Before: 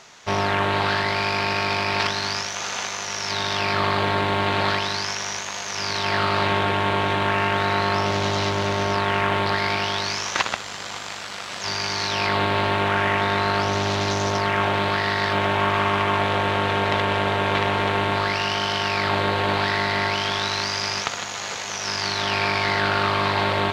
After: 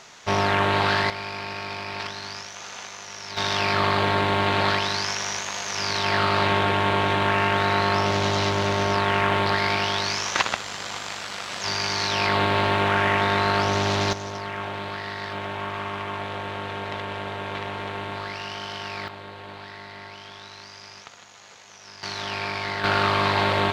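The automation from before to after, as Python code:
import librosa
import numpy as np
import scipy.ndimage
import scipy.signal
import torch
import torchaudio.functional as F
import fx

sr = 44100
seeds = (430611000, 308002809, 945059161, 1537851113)

y = fx.gain(x, sr, db=fx.steps((0.0, 0.5), (1.1, -9.5), (3.37, 0.0), (14.13, -10.0), (19.08, -18.0), (22.03, -7.0), (22.84, 0.0)))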